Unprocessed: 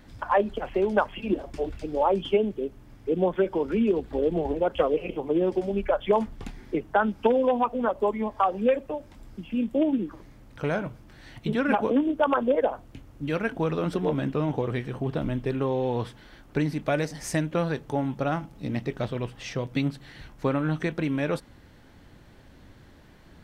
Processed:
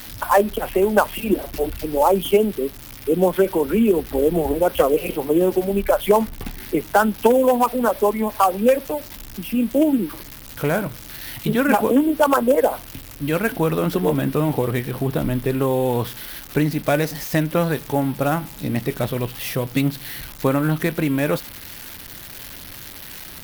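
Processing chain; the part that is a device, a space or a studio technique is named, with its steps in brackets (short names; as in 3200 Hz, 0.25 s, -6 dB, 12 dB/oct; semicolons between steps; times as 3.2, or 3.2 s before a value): budget class-D amplifier (switching dead time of 0.059 ms; switching spikes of -26 dBFS); gain +6.5 dB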